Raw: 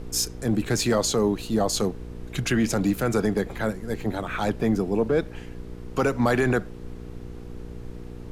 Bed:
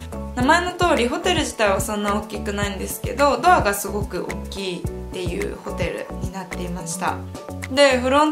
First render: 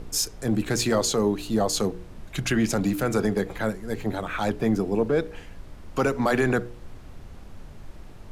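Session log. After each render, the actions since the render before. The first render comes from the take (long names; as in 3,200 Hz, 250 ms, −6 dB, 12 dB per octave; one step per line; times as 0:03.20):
hum removal 60 Hz, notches 8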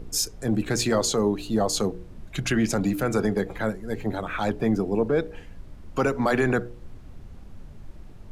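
broadband denoise 6 dB, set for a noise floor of −44 dBFS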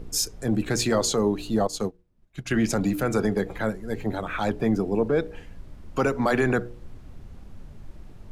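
0:01.67–0:02.54: expander for the loud parts 2.5 to 1, over −39 dBFS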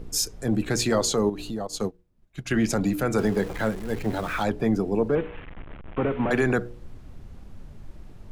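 0:01.29–0:01.74: downward compressor 3 to 1, threshold −29 dBFS
0:03.18–0:04.43: converter with a step at zero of −35.5 dBFS
0:05.15–0:06.31: linear delta modulator 16 kbit/s, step −35.5 dBFS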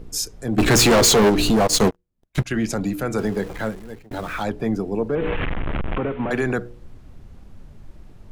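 0:00.58–0:02.44: leveller curve on the samples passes 5
0:03.64–0:04.11: fade out
0:05.17–0:05.98: envelope flattener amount 100%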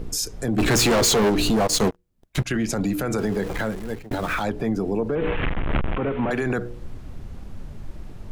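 in parallel at +1 dB: downward compressor, threshold −28 dBFS, peak gain reduction 13.5 dB
on the sum: brickwall limiter −15.5 dBFS, peak gain reduction 7.5 dB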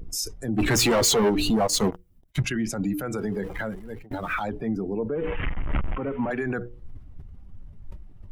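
spectral dynamics exaggerated over time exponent 1.5
level that may fall only so fast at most 100 dB per second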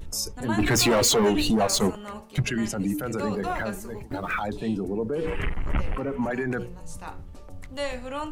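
mix in bed −16.5 dB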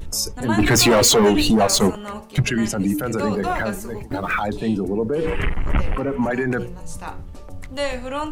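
level +6 dB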